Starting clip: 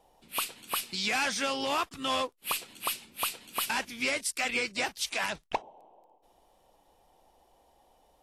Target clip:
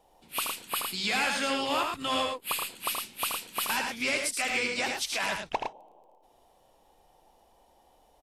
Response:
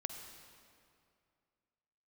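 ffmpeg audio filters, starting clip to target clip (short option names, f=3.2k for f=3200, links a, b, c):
-filter_complex "[0:a]asettb=1/sr,asplit=3[a][b][c];[a]atrim=end=0.674[d];[b]atrim=start=0.67:end=2.79,asetpts=PTS-STARTPTS,afade=t=in:d=0.004:c=qsin,afade=t=out:st=2.116:d=0.004:c=qsin,bandreject=f=5.8k:w=5[e];[c]atrim=start=2.786[f];[d][e]acrossfade=d=0.004:c1=hsin:c2=qsin[g];[g][f]acrossfade=d=0.004:c1=qsin:c2=hsin,asplit=2[h][i];[i]aecho=0:1:77|110:0.473|0.531[j];[h][j]amix=inputs=2:normalize=0"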